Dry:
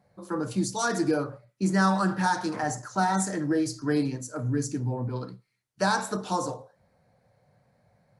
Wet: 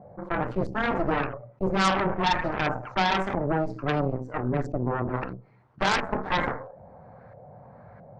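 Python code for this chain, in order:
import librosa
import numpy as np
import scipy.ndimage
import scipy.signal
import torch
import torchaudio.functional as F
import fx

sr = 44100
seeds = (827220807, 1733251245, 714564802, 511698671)

y = fx.filter_lfo_lowpass(x, sr, shape='saw_up', hz=1.5, low_hz=630.0, high_hz=1500.0, q=2.0)
y = fx.cheby_harmonics(y, sr, harmonics=(3, 5, 8), levels_db=(-11, -38, -18), full_scale_db=-9.0)
y = fx.env_flatten(y, sr, amount_pct=50)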